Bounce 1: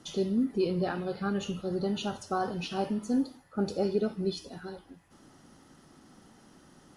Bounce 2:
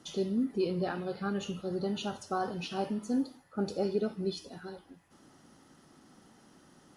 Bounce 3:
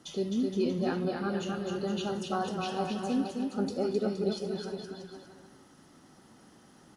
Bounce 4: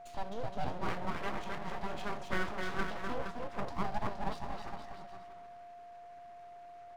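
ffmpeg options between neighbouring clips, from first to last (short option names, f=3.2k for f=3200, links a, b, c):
-af "lowshelf=f=68:g=-8.5,volume=-2dB"
-af "aecho=1:1:260|468|634.4|767.5|874:0.631|0.398|0.251|0.158|0.1"
-af "bandpass=f=820:t=q:w=0.89:csg=0,aeval=exprs='abs(val(0))':c=same,aeval=exprs='val(0)+0.00282*sin(2*PI*700*n/s)':c=same,volume=2.5dB"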